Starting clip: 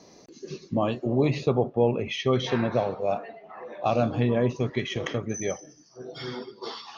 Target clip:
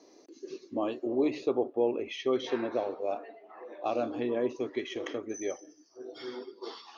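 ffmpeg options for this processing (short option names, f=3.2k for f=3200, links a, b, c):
-af "lowshelf=f=220:t=q:w=3:g=-11.5,volume=-8dB"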